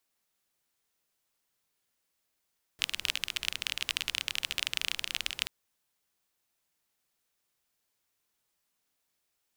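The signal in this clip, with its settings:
rain-like ticks over hiss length 2.68 s, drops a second 26, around 2,900 Hz, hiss −19 dB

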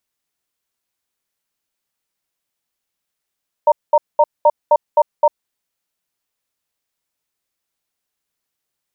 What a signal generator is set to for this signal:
tone pair in a cadence 597 Hz, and 927 Hz, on 0.05 s, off 0.21 s, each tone −10 dBFS 1.76 s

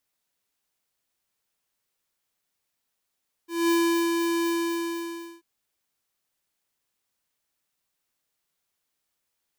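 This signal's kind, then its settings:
note with an ADSR envelope square 337 Hz, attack 207 ms, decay 426 ms, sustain −4 dB, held 0.99 s, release 948 ms −21 dBFS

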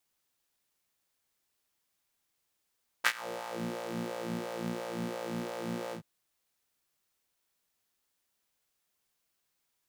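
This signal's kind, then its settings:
subtractive patch with filter wobble A#2, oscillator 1 saw, oscillator 2 square, interval +7 semitones, oscillator 2 level −7 dB, noise −28.5 dB, filter highpass, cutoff 170 Hz, Q 2.4, filter envelope 3 octaves, filter decay 0.57 s, filter sustain 35%, attack 23 ms, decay 0.06 s, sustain −20.5 dB, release 0.10 s, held 2.88 s, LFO 2.9 Hz, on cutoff 0.7 octaves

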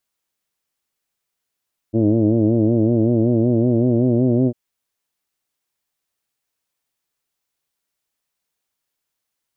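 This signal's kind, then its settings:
vowel from formants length 2.60 s, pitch 108 Hz, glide +2.5 semitones, F1 300 Hz, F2 600 Hz, F3 2,900 Hz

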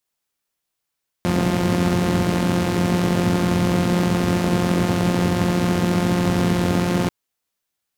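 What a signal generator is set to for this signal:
pulse-train model of a four-cylinder engine, steady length 5.84 s, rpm 5,300, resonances 110/200 Hz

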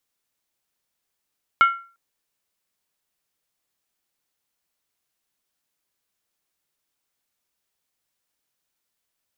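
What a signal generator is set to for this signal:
struck skin length 0.35 s, lowest mode 1,370 Hz, decay 0.38 s, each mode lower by 9 dB, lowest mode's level −8.5 dB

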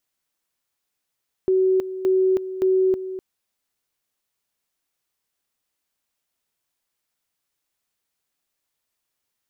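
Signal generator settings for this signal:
tone at two levels in turn 376 Hz −15 dBFS, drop 12.5 dB, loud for 0.32 s, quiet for 0.25 s, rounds 3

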